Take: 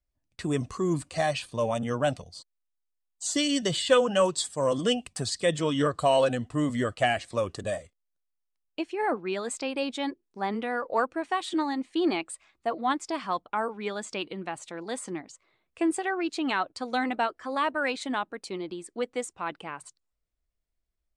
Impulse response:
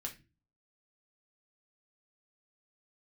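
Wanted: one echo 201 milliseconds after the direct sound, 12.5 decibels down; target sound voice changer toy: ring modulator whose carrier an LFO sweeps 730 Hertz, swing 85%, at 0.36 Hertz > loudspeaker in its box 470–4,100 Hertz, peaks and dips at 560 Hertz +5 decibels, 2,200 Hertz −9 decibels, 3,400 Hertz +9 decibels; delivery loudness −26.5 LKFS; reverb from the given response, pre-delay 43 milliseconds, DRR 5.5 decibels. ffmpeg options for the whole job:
-filter_complex "[0:a]aecho=1:1:201:0.237,asplit=2[link_01][link_02];[1:a]atrim=start_sample=2205,adelay=43[link_03];[link_02][link_03]afir=irnorm=-1:irlink=0,volume=-4dB[link_04];[link_01][link_04]amix=inputs=2:normalize=0,aeval=exprs='val(0)*sin(2*PI*730*n/s+730*0.85/0.36*sin(2*PI*0.36*n/s))':channel_layout=same,highpass=470,equalizer=frequency=560:width_type=q:width=4:gain=5,equalizer=frequency=2200:width_type=q:width=4:gain=-9,equalizer=frequency=3400:width_type=q:width=4:gain=9,lowpass=frequency=4100:width=0.5412,lowpass=frequency=4100:width=1.3066,volume=4.5dB"

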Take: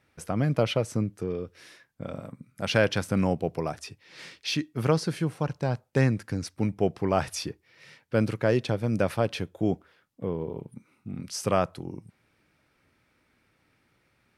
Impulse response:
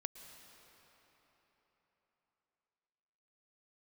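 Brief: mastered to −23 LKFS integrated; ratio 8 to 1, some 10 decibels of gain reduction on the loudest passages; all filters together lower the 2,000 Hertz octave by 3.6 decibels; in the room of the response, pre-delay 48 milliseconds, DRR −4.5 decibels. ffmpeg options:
-filter_complex "[0:a]equalizer=frequency=2000:width_type=o:gain=-5,acompressor=threshold=-28dB:ratio=8,asplit=2[link_01][link_02];[1:a]atrim=start_sample=2205,adelay=48[link_03];[link_02][link_03]afir=irnorm=-1:irlink=0,volume=7dB[link_04];[link_01][link_04]amix=inputs=2:normalize=0,volume=7.5dB"

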